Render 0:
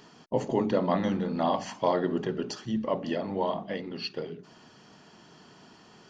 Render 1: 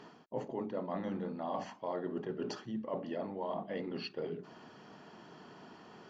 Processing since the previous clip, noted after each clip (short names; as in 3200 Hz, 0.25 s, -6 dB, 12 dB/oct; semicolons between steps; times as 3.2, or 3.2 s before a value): LPF 1400 Hz 6 dB/oct; low shelf 150 Hz -10.5 dB; reverse; compressor 6:1, threshold -39 dBFS, peak gain reduction 16.5 dB; reverse; gain +3.5 dB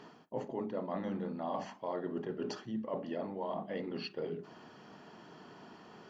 reverb, pre-delay 36 ms, DRR 16.5 dB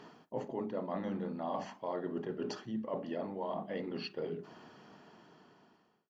ending faded out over 1.59 s